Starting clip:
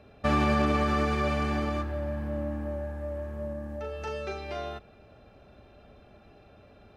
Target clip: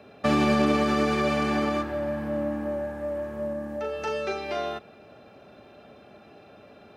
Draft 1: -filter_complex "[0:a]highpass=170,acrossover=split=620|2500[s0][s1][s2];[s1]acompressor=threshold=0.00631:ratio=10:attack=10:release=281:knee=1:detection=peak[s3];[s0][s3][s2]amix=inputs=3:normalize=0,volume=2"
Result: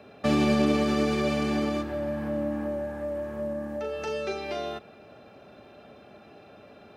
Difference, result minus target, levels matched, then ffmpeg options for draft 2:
compression: peak gain reduction +9 dB
-filter_complex "[0:a]highpass=170,acrossover=split=620|2500[s0][s1][s2];[s1]acompressor=threshold=0.02:ratio=10:attack=10:release=281:knee=1:detection=peak[s3];[s0][s3][s2]amix=inputs=3:normalize=0,volume=2"

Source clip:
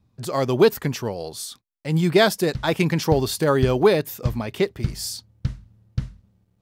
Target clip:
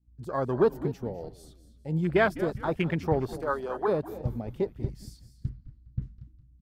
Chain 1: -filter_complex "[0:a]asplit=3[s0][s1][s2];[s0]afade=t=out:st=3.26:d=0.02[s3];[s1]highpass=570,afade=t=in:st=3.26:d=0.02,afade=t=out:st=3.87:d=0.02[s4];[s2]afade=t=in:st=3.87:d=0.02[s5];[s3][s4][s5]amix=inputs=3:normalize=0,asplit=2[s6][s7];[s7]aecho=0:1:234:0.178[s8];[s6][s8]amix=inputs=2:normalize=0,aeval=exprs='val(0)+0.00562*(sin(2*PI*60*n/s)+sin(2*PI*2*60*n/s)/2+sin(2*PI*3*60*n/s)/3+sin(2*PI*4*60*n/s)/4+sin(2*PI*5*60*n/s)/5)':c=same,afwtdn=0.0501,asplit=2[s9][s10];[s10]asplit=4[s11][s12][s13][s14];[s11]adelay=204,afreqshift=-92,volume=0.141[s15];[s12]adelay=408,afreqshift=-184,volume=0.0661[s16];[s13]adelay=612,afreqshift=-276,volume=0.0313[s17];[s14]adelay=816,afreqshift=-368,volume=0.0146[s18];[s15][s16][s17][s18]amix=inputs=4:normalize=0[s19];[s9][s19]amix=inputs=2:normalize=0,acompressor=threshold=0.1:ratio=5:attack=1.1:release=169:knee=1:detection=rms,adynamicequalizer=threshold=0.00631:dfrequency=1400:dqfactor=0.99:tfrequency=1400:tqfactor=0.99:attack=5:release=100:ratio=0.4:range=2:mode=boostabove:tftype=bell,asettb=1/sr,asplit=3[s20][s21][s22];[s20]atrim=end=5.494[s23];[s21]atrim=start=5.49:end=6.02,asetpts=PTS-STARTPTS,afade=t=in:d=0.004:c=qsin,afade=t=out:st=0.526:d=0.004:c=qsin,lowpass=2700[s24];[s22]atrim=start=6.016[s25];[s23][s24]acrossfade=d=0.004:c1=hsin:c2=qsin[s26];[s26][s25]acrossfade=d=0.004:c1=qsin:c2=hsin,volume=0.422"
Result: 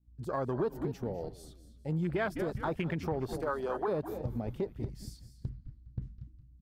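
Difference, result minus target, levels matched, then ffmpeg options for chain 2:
compression: peak gain reduction +11 dB
-filter_complex "[0:a]asplit=3[s0][s1][s2];[s0]afade=t=out:st=3.26:d=0.02[s3];[s1]highpass=570,afade=t=in:st=3.26:d=0.02,afade=t=out:st=3.87:d=0.02[s4];[s2]afade=t=in:st=3.87:d=0.02[s5];[s3][s4][s5]amix=inputs=3:normalize=0,asplit=2[s6][s7];[s7]aecho=0:1:234:0.178[s8];[s6][s8]amix=inputs=2:normalize=0,aeval=exprs='val(0)+0.00562*(sin(2*PI*60*n/s)+sin(2*PI*2*60*n/s)/2+sin(2*PI*3*60*n/s)/3+sin(2*PI*4*60*n/s)/4+sin(2*PI*5*60*n/s)/5)':c=same,afwtdn=0.0501,asplit=2[s9][s10];[s10]asplit=4[s11][s12][s13][s14];[s11]adelay=204,afreqshift=-92,volume=0.141[s15];[s12]adelay=408,afreqshift=-184,volume=0.0661[s16];[s13]adelay=612,afreqshift=-276,volume=0.0313[s17];[s14]adelay=816,afreqshift=-368,volume=0.0146[s18];[s15][s16][s17][s18]amix=inputs=4:normalize=0[s19];[s9][s19]amix=inputs=2:normalize=0,adynamicequalizer=threshold=0.00631:dfrequency=1400:dqfactor=0.99:tfrequency=1400:tqfactor=0.99:attack=5:release=100:ratio=0.4:range=2:mode=boostabove:tftype=bell,asettb=1/sr,asplit=3[s20][s21][s22];[s20]atrim=end=5.494[s23];[s21]atrim=start=5.49:end=6.02,asetpts=PTS-STARTPTS,afade=t=in:d=0.004:c=qsin,afade=t=out:st=0.526:d=0.004:c=qsin,lowpass=2700[s24];[s22]atrim=start=6.016[s25];[s23][s24]acrossfade=d=0.004:c1=hsin:c2=qsin[s26];[s26][s25]acrossfade=d=0.004:c1=qsin:c2=hsin,volume=0.422"

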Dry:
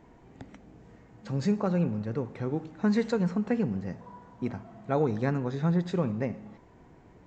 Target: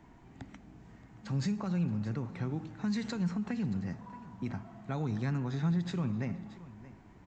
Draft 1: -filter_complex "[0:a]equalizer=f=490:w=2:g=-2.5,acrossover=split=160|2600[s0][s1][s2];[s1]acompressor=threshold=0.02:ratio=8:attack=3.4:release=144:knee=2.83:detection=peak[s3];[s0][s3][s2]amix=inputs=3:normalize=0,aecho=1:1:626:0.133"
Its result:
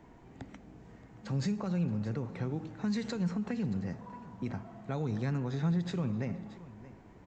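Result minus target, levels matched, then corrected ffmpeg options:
500 Hz band +3.5 dB
-filter_complex "[0:a]equalizer=f=490:w=2:g=-10,acrossover=split=160|2600[s0][s1][s2];[s1]acompressor=threshold=0.02:ratio=8:attack=3.4:release=144:knee=2.83:detection=peak[s3];[s0][s3][s2]amix=inputs=3:normalize=0,aecho=1:1:626:0.133"

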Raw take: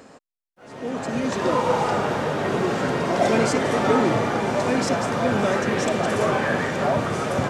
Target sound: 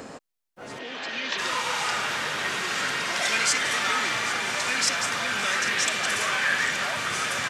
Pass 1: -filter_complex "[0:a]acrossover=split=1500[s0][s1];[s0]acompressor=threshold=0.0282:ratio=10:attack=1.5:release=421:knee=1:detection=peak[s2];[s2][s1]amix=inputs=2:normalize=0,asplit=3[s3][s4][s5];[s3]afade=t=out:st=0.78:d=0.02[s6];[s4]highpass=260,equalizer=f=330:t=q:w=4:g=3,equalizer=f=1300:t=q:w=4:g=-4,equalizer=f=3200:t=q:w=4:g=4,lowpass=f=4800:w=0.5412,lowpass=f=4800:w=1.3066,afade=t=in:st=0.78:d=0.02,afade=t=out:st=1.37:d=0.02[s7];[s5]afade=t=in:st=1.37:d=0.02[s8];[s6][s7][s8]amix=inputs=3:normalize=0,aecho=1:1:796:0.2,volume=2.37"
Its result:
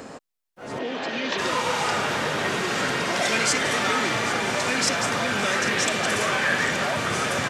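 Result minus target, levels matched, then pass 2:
compression: peak gain reduction -10.5 dB
-filter_complex "[0:a]acrossover=split=1500[s0][s1];[s0]acompressor=threshold=0.0075:ratio=10:attack=1.5:release=421:knee=1:detection=peak[s2];[s2][s1]amix=inputs=2:normalize=0,asplit=3[s3][s4][s5];[s3]afade=t=out:st=0.78:d=0.02[s6];[s4]highpass=260,equalizer=f=330:t=q:w=4:g=3,equalizer=f=1300:t=q:w=4:g=-4,equalizer=f=3200:t=q:w=4:g=4,lowpass=f=4800:w=0.5412,lowpass=f=4800:w=1.3066,afade=t=in:st=0.78:d=0.02,afade=t=out:st=1.37:d=0.02[s7];[s5]afade=t=in:st=1.37:d=0.02[s8];[s6][s7][s8]amix=inputs=3:normalize=0,aecho=1:1:796:0.2,volume=2.37"

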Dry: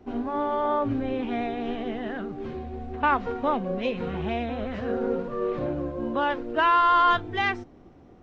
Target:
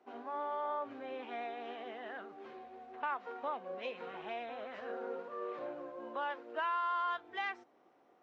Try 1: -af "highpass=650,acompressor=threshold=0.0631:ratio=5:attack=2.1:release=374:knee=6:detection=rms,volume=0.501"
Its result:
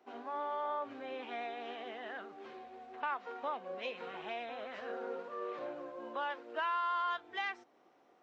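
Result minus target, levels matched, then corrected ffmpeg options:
4 kHz band +3.0 dB
-af "highpass=650,highshelf=f=2800:g=-7,acompressor=threshold=0.0631:ratio=5:attack=2.1:release=374:knee=6:detection=rms,volume=0.501"

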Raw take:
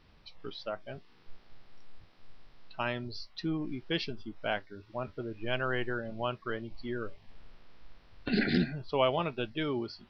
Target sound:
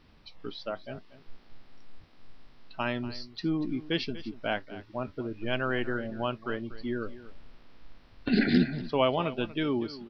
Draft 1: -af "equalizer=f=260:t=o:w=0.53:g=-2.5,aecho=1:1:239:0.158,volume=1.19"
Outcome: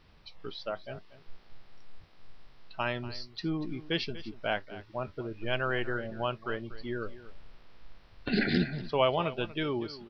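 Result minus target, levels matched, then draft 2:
250 Hz band -3.0 dB
-af "equalizer=f=260:t=o:w=0.53:g=6,aecho=1:1:239:0.158,volume=1.19"

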